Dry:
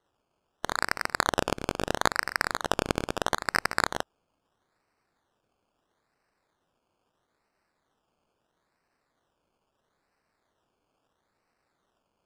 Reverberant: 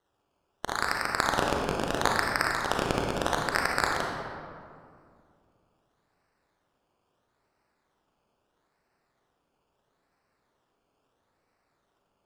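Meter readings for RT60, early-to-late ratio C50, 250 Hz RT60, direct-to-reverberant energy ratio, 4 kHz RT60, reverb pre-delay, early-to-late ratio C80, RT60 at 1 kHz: 2.2 s, 1.0 dB, 2.7 s, -0.5 dB, 1.2 s, 31 ms, 3.0 dB, 2.1 s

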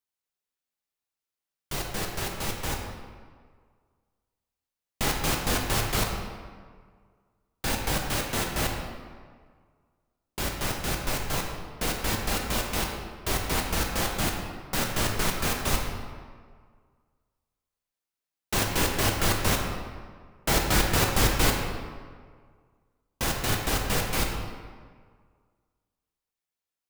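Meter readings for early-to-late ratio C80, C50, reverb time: 5.0 dB, 3.0 dB, 1.8 s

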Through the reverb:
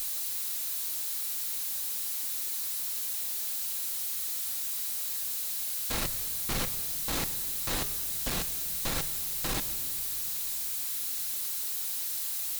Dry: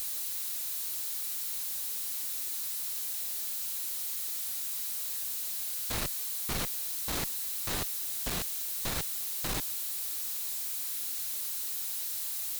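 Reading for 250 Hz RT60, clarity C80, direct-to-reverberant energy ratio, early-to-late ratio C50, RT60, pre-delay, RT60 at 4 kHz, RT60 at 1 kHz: 2.9 s, 15.0 dB, 9.0 dB, 14.0 dB, 2.0 s, 4 ms, 1.6 s, 1.8 s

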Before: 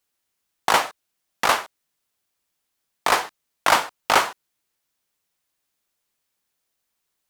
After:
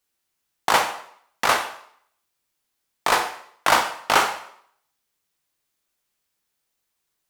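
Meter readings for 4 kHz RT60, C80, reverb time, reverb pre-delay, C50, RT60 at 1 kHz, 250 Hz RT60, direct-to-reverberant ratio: 0.60 s, 12.5 dB, 0.65 s, 10 ms, 9.5 dB, 0.65 s, 0.60 s, 5.0 dB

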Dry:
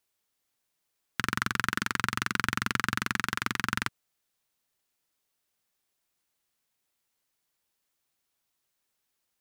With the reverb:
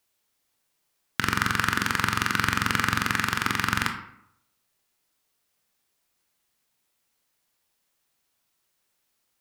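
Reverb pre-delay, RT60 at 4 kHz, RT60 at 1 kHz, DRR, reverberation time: 19 ms, 0.45 s, 0.75 s, 5.0 dB, 0.75 s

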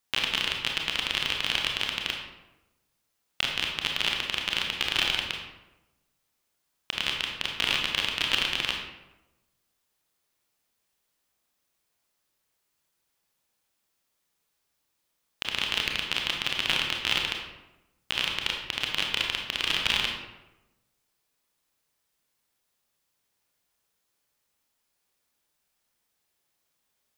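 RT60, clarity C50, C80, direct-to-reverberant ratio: 1.0 s, 3.0 dB, 6.0 dB, 0.5 dB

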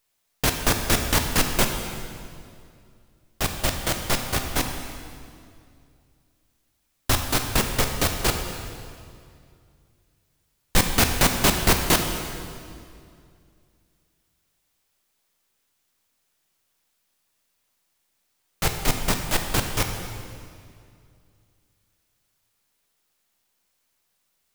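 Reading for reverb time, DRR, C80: 2.3 s, 4.0 dB, 6.5 dB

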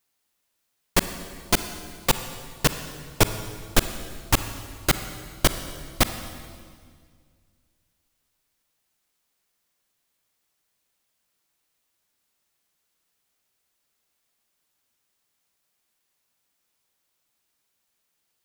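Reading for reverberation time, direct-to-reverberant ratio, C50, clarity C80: 1.9 s, 9.5 dB, 10.0 dB, 11.0 dB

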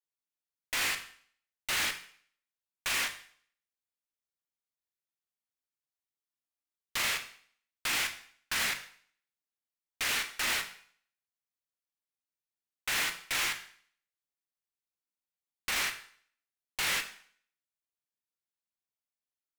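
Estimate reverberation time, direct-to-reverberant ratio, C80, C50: 0.55 s, 6.0 dB, 15.0 dB, 11.5 dB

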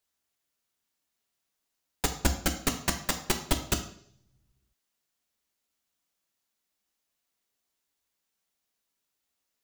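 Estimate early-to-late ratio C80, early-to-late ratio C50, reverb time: 13.5 dB, 10.0 dB, 0.60 s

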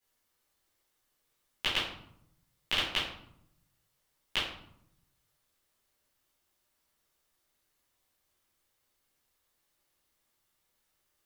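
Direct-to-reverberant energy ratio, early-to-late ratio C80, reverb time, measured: -11.5 dB, 7.0 dB, 0.70 s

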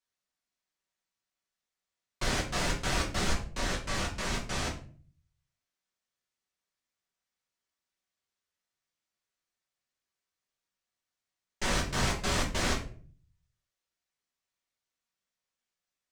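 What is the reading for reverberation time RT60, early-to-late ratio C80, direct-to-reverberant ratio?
0.45 s, 13.0 dB, -4.0 dB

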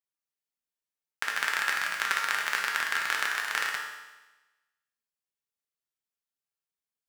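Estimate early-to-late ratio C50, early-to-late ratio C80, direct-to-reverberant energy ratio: 3.0 dB, 5.5 dB, -1.0 dB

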